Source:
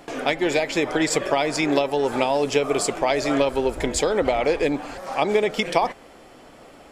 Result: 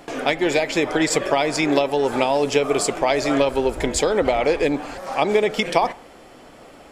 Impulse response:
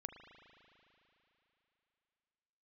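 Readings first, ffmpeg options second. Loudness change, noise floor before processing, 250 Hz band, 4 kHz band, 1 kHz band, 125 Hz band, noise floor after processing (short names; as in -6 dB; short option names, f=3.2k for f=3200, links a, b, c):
+2.0 dB, -47 dBFS, +2.0 dB, +2.0 dB, +2.0 dB, +2.0 dB, -45 dBFS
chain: -filter_complex "[0:a]asplit=2[a][b];[1:a]atrim=start_sample=2205,afade=t=out:st=0.22:d=0.01,atrim=end_sample=10143[c];[b][c]afir=irnorm=-1:irlink=0,volume=-7dB[d];[a][d]amix=inputs=2:normalize=0"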